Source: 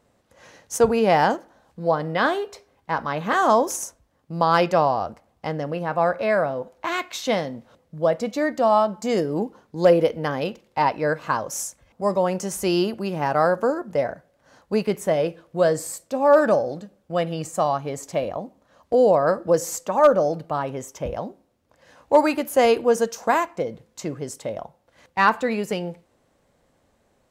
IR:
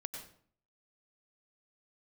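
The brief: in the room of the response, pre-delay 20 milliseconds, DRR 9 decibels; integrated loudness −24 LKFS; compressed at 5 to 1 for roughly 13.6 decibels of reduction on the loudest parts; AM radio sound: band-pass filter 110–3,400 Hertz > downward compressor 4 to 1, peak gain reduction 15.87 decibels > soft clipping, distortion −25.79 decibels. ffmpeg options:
-filter_complex "[0:a]acompressor=threshold=-26dB:ratio=5,asplit=2[link_01][link_02];[1:a]atrim=start_sample=2205,adelay=20[link_03];[link_02][link_03]afir=irnorm=-1:irlink=0,volume=-7.5dB[link_04];[link_01][link_04]amix=inputs=2:normalize=0,highpass=110,lowpass=3400,acompressor=threshold=-41dB:ratio=4,asoftclip=threshold=-27.5dB,volume=20dB"

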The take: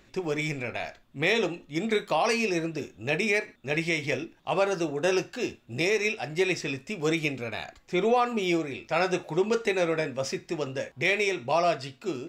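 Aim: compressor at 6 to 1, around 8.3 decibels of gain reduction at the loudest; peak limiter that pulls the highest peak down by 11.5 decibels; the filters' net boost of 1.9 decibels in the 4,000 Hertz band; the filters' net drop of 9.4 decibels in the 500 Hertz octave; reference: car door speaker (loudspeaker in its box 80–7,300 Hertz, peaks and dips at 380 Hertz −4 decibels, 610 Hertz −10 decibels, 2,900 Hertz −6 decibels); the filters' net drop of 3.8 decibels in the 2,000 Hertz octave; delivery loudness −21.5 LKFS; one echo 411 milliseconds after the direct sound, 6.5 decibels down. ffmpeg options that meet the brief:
ffmpeg -i in.wav -af "equalizer=frequency=500:width_type=o:gain=-6.5,equalizer=frequency=2000:width_type=o:gain=-4.5,equalizer=frequency=4000:width_type=o:gain=6,acompressor=threshold=-32dB:ratio=6,alimiter=level_in=7.5dB:limit=-24dB:level=0:latency=1,volume=-7.5dB,highpass=80,equalizer=frequency=380:width_type=q:width=4:gain=-4,equalizer=frequency=610:width_type=q:width=4:gain=-10,equalizer=frequency=2900:width_type=q:width=4:gain=-6,lowpass=frequency=7300:width=0.5412,lowpass=frequency=7300:width=1.3066,aecho=1:1:411:0.473,volume=20.5dB" out.wav

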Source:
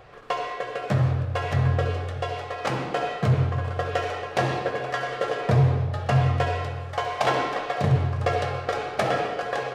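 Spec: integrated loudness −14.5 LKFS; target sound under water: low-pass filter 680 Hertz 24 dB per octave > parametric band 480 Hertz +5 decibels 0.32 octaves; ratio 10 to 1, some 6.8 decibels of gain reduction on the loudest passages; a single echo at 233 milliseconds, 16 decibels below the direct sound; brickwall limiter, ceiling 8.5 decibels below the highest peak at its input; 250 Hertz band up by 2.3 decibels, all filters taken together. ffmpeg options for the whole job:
ffmpeg -i in.wav -af "equalizer=frequency=250:width_type=o:gain=4,acompressor=threshold=-21dB:ratio=10,alimiter=limit=-20.5dB:level=0:latency=1,lowpass=frequency=680:width=0.5412,lowpass=frequency=680:width=1.3066,equalizer=frequency=480:width_type=o:width=0.32:gain=5,aecho=1:1:233:0.158,volume=16dB" out.wav

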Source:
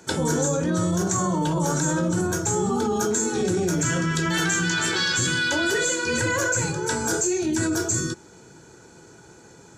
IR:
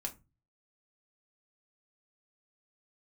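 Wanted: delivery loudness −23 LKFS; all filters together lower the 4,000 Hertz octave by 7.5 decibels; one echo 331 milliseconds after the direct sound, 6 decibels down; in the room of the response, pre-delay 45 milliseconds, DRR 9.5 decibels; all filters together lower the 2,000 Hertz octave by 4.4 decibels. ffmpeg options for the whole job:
-filter_complex "[0:a]equalizer=frequency=2000:width_type=o:gain=-5.5,equalizer=frequency=4000:width_type=o:gain=-8,aecho=1:1:331:0.501,asplit=2[link_01][link_02];[1:a]atrim=start_sample=2205,adelay=45[link_03];[link_02][link_03]afir=irnorm=-1:irlink=0,volume=-9dB[link_04];[link_01][link_04]amix=inputs=2:normalize=0"

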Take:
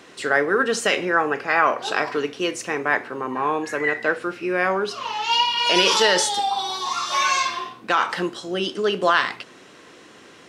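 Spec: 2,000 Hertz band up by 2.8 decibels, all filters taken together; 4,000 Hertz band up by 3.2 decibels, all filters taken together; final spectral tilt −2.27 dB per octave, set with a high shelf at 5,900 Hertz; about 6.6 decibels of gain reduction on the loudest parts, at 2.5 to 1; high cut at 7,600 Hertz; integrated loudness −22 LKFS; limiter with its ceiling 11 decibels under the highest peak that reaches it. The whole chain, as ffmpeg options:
ffmpeg -i in.wav -af "lowpass=7600,equalizer=frequency=2000:width_type=o:gain=3,equalizer=frequency=4000:width_type=o:gain=4.5,highshelf=frequency=5900:gain=-3.5,acompressor=threshold=-21dB:ratio=2.5,volume=6dB,alimiter=limit=-13dB:level=0:latency=1" out.wav

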